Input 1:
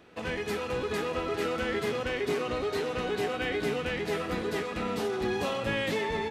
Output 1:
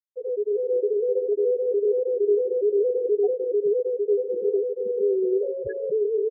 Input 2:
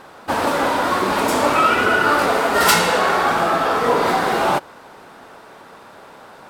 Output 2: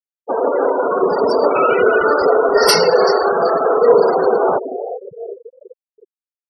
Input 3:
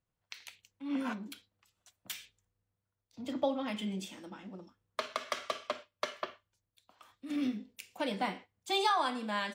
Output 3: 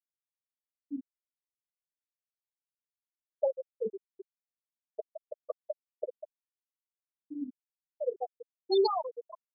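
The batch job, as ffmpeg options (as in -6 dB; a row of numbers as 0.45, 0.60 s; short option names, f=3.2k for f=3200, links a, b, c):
-filter_complex "[0:a]bandreject=f=50:t=h:w=6,bandreject=f=100:t=h:w=6,bandreject=f=150:t=h:w=6,bandreject=f=200:t=h:w=6,bandreject=f=250:t=h:w=6,asplit=2[a][b];[b]asplit=6[c][d][e][f][g][h];[c]adelay=382,afreqshift=-100,volume=-11dB[i];[d]adelay=764,afreqshift=-200,volume=-16.7dB[j];[e]adelay=1146,afreqshift=-300,volume=-22.4dB[k];[f]adelay=1528,afreqshift=-400,volume=-28dB[l];[g]adelay=1910,afreqshift=-500,volume=-33.7dB[m];[h]adelay=2292,afreqshift=-600,volume=-39.4dB[n];[i][j][k][l][m][n]amix=inputs=6:normalize=0[o];[a][o]amix=inputs=2:normalize=0,aeval=exprs='val(0)+0.00891*(sin(2*PI*60*n/s)+sin(2*PI*2*60*n/s)/2+sin(2*PI*3*60*n/s)/3+sin(2*PI*4*60*n/s)/4+sin(2*PI*5*60*n/s)/5)':c=same,superequalizer=7b=3.98:8b=1.78:14b=3.16:16b=2,asplit=2[p][q];[q]aecho=0:1:393|786|1179:0.141|0.0509|0.0183[r];[p][r]amix=inputs=2:normalize=0,volume=2dB,asoftclip=hard,volume=-2dB,afftfilt=real='re*gte(hypot(re,im),0.251)':imag='im*gte(hypot(re,im),0.251)':win_size=1024:overlap=0.75,volume=-1.5dB"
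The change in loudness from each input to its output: +7.0, +2.5, +1.0 LU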